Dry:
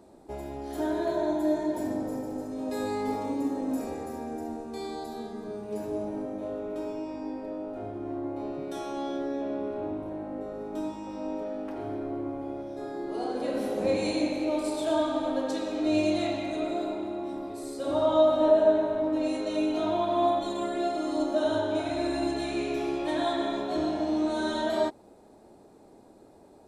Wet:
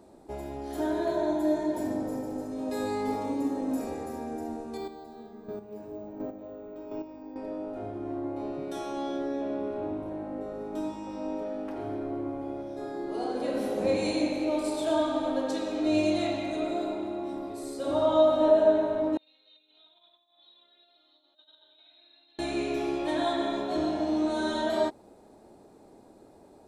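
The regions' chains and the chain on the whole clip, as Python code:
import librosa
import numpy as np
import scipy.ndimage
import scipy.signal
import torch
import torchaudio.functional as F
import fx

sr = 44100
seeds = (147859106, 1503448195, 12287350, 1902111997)

y = fx.chain(x, sr, fx.high_shelf(hz=3500.0, db=-8.5),
    fx.chopper(hz=1.4, depth_pct=60, duty_pct=15),
    fx.resample_bad(factor=2, down='filtered', up='hold'), at=(4.77, 7.36))
y = fx.chain(y, sr, fx.over_compress(threshold_db=-28.0, ratio=-0.5),
    fx.bandpass_q(hz=3700.0, q=15.0),
    fx.air_absorb(metres=300.0), at=(19.17, 22.39))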